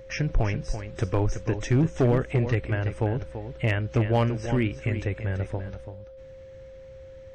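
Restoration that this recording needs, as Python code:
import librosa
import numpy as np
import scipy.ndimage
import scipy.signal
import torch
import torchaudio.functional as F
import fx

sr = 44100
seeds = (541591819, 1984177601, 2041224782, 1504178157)

y = fx.fix_declip(x, sr, threshold_db=-15.5)
y = fx.notch(y, sr, hz=530.0, q=30.0)
y = fx.fix_echo_inverse(y, sr, delay_ms=336, level_db=-10.0)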